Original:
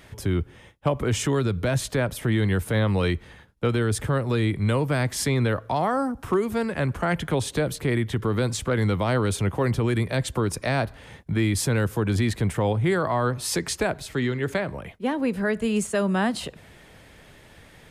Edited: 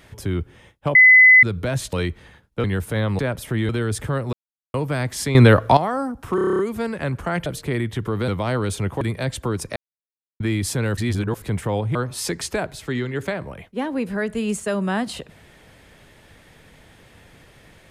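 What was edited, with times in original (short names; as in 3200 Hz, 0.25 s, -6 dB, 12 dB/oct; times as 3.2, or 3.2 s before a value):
0.95–1.43 bleep 2020 Hz -6.5 dBFS
1.93–2.43 swap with 2.98–3.69
4.33–4.74 mute
5.35–5.77 gain +12 dB
6.35 stutter 0.03 s, 9 plays
7.22–7.63 cut
8.45–8.89 cut
9.62–9.93 cut
10.68–11.32 mute
11.89–12.34 reverse
12.87–13.22 cut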